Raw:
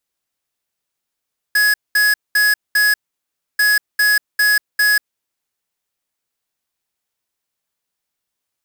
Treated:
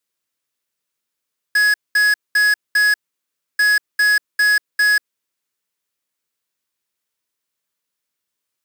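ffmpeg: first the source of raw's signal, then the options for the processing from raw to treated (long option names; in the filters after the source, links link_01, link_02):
-f lavfi -i "aevalsrc='0.211*(2*lt(mod(1680*t,1),0.5)-1)*clip(min(mod(mod(t,2.04),0.4),0.19-mod(mod(t,2.04),0.4))/0.005,0,1)*lt(mod(t,2.04),1.6)':duration=4.08:sample_rate=44100"
-filter_complex "[0:a]acrossover=split=460|4400[link_01][link_02][link_03];[link_01]highpass=frequency=140:poles=1[link_04];[link_02]equalizer=frequency=750:width_type=o:width=0.28:gain=-11.5[link_05];[link_03]asoftclip=type=hard:threshold=-24.5dB[link_06];[link_04][link_05][link_06]amix=inputs=3:normalize=0"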